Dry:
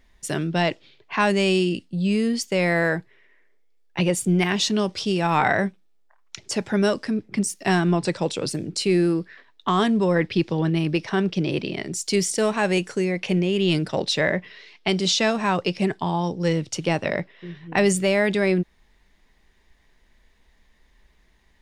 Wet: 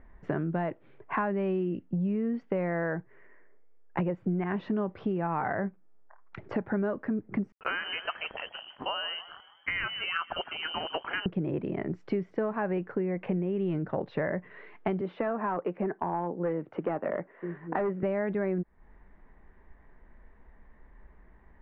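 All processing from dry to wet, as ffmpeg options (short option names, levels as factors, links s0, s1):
-filter_complex "[0:a]asettb=1/sr,asplit=3[s0][s1][s2];[s0]atrim=end=7.524[s3];[s1]atrim=start=7.52:end=11.26,asetpts=PTS-STARTPTS,afade=t=in:d=0.004:c=qsin,afade=t=out:st=3.736:d=0.004:c=qsin,lowpass=f=2700:t=q:w=0.5098,lowpass=f=2700:t=q:w=0.6013,lowpass=f=2700:t=q:w=0.9,lowpass=f=2700:t=q:w=2.563,afreqshift=-3200,aeval=exprs='sgn(val(0))*max(abs(val(0))-0.00531,0)':c=same,asplit=6[s4][s5][s6][s7][s8][s9];[s5]adelay=155,afreqshift=60,volume=0.15[s10];[s6]adelay=310,afreqshift=120,volume=0.0794[s11];[s7]adelay=465,afreqshift=180,volume=0.0422[s12];[s8]adelay=620,afreqshift=240,volume=0.0224[s13];[s9]adelay=775,afreqshift=300,volume=0.0117[s14];[s4][s10][s11][s12][s13][s14]amix=inputs=6:normalize=0,atrim=end_sample=164934[s15];[s2]atrim=start=11.256[s16];[s3][s15]acrossfade=d=0.004:c1=hsin:c2=qsin[s17];[s17][s16]acrossfade=d=0.004:c1=qsin:c2=hsin,asettb=1/sr,asplit=3[s18][s19][s20];[s18]atrim=end=15.014[s21];[s19]atrim=start=15.01:end=18.03,asetpts=PTS-STARTPTS,afade=t=in:d=0.004:c=qsin,afade=t=out:st=3.016:d=0.004:c=qsin,acrossover=split=210 2700:gain=0.0891 1 0.2[s22][s23][s24];[s22][s23][s24]amix=inputs=3:normalize=0,asoftclip=type=hard:threshold=0.119[s25];[s20]atrim=start=18.026[s26];[s21][s25]acrossfade=d=0.004:c1=hsin:c2=qsin[s27];[s27][s26]acrossfade=d=0.004:c1=qsin:c2=hsin,lowpass=f=1600:w=0.5412,lowpass=f=1600:w=1.3066,acompressor=threshold=0.02:ratio=5,volume=1.88"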